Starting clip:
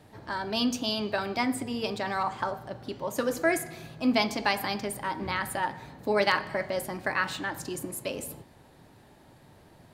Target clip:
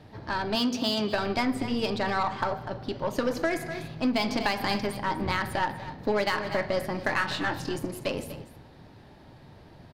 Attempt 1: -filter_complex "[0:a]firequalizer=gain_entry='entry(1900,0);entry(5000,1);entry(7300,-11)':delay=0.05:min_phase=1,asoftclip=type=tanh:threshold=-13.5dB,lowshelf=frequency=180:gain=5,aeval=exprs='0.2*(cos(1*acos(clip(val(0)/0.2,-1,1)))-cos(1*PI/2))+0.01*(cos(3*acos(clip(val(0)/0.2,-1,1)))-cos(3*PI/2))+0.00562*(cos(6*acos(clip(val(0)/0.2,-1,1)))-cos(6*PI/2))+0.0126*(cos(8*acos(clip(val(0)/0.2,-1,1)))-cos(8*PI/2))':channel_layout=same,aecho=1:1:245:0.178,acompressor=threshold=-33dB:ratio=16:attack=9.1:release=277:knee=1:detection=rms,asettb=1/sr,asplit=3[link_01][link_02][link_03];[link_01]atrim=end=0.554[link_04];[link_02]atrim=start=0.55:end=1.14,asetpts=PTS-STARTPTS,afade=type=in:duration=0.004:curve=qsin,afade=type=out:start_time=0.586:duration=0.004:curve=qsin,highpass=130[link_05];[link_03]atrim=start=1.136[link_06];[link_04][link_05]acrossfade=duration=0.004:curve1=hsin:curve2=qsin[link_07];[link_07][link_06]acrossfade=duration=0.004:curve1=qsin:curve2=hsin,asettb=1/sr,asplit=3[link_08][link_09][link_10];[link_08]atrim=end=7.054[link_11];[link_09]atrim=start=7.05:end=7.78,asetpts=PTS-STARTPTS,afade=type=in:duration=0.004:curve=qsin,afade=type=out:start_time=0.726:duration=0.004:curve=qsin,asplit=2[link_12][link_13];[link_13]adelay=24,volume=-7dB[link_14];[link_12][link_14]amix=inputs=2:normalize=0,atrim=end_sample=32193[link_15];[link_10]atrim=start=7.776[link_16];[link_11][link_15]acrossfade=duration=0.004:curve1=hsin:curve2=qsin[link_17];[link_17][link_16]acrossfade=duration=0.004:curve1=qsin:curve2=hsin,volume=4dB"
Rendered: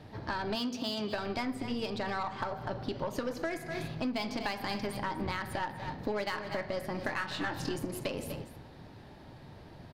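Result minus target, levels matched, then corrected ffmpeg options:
downward compressor: peak gain reduction +8 dB
-filter_complex "[0:a]firequalizer=gain_entry='entry(1900,0);entry(5000,1);entry(7300,-11)':delay=0.05:min_phase=1,asoftclip=type=tanh:threshold=-13.5dB,lowshelf=frequency=180:gain=5,aeval=exprs='0.2*(cos(1*acos(clip(val(0)/0.2,-1,1)))-cos(1*PI/2))+0.01*(cos(3*acos(clip(val(0)/0.2,-1,1)))-cos(3*PI/2))+0.00562*(cos(6*acos(clip(val(0)/0.2,-1,1)))-cos(6*PI/2))+0.0126*(cos(8*acos(clip(val(0)/0.2,-1,1)))-cos(8*PI/2))':channel_layout=same,aecho=1:1:245:0.178,acompressor=threshold=-24.5dB:ratio=16:attack=9.1:release=277:knee=1:detection=rms,asettb=1/sr,asplit=3[link_01][link_02][link_03];[link_01]atrim=end=0.554[link_04];[link_02]atrim=start=0.55:end=1.14,asetpts=PTS-STARTPTS,afade=type=in:duration=0.004:curve=qsin,afade=type=out:start_time=0.586:duration=0.004:curve=qsin,highpass=130[link_05];[link_03]atrim=start=1.136[link_06];[link_04][link_05]acrossfade=duration=0.004:curve1=hsin:curve2=qsin[link_07];[link_07][link_06]acrossfade=duration=0.004:curve1=qsin:curve2=hsin,asettb=1/sr,asplit=3[link_08][link_09][link_10];[link_08]atrim=end=7.054[link_11];[link_09]atrim=start=7.05:end=7.78,asetpts=PTS-STARTPTS,afade=type=in:duration=0.004:curve=qsin,afade=type=out:start_time=0.726:duration=0.004:curve=qsin,asplit=2[link_12][link_13];[link_13]adelay=24,volume=-7dB[link_14];[link_12][link_14]amix=inputs=2:normalize=0,atrim=end_sample=32193[link_15];[link_10]atrim=start=7.776[link_16];[link_11][link_15]acrossfade=duration=0.004:curve1=hsin:curve2=qsin[link_17];[link_17][link_16]acrossfade=duration=0.004:curve1=qsin:curve2=hsin,volume=4dB"

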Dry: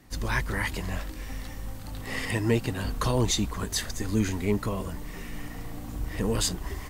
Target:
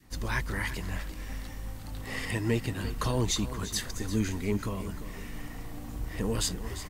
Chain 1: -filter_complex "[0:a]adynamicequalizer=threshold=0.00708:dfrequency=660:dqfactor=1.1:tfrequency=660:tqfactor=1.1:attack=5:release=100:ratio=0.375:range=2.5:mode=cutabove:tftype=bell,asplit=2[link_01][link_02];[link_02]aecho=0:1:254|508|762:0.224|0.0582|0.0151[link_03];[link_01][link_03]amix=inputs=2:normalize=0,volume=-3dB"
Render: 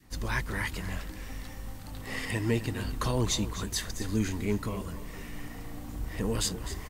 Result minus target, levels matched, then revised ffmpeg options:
echo 93 ms early
-filter_complex "[0:a]adynamicequalizer=threshold=0.00708:dfrequency=660:dqfactor=1.1:tfrequency=660:tqfactor=1.1:attack=5:release=100:ratio=0.375:range=2.5:mode=cutabove:tftype=bell,asplit=2[link_01][link_02];[link_02]aecho=0:1:347|694|1041:0.224|0.0582|0.0151[link_03];[link_01][link_03]amix=inputs=2:normalize=0,volume=-3dB"

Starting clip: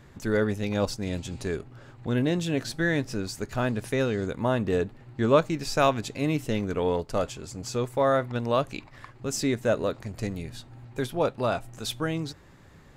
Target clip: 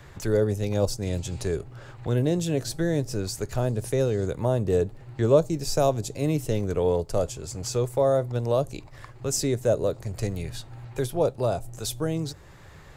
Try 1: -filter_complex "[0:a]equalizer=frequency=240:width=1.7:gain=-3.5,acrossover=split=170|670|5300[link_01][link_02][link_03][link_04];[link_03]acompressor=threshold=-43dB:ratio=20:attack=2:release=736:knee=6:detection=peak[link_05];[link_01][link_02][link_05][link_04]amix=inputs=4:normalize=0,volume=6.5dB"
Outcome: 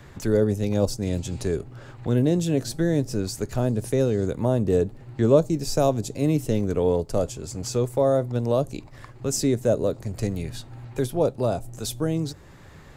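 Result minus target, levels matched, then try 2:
250 Hz band +3.0 dB
-filter_complex "[0:a]equalizer=frequency=240:width=1.7:gain=-11,acrossover=split=170|670|5300[link_01][link_02][link_03][link_04];[link_03]acompressor=threshold=-43dB:ratio=20:attack=2:release=736:knee=6:detection=peak[link_05];[link_01][link_02][link_05][link_04]amix=inputs=4:normalize=0,volume=6.5dB"

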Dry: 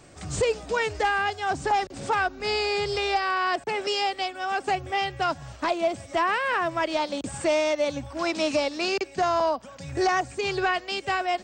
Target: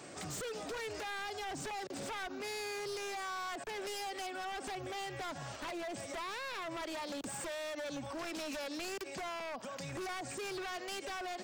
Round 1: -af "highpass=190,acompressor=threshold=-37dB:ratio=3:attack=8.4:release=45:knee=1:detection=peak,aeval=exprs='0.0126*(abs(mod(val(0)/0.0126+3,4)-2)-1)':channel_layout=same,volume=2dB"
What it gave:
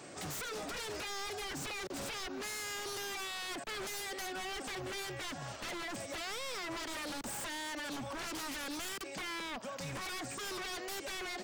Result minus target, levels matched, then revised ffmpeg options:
downward compressor: peak gain reduction −5 dB
-af "highpass=190,acompressor=threshold=-44.5dB:ratio=3:attack=8.4:release=45:knee=1:detection=peak,aeval=exprs='0.0126*(abs(mod(val(0)/0.0126+3,4)-2)-1)':channel_layout=same,volume=2dB"

